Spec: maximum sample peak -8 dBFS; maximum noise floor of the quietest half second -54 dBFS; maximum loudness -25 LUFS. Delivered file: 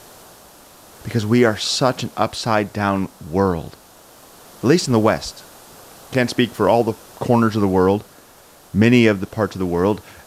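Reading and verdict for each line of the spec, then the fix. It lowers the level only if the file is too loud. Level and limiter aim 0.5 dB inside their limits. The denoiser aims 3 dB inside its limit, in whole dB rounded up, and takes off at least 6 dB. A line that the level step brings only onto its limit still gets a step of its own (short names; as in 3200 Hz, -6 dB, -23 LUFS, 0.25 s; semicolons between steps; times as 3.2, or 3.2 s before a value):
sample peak -2.0 dBFS: fail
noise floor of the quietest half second -47 dBFS: fail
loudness -18.5 LUFS: fail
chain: denoiser 6 dB, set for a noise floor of -47 dBFS; gain -7 dB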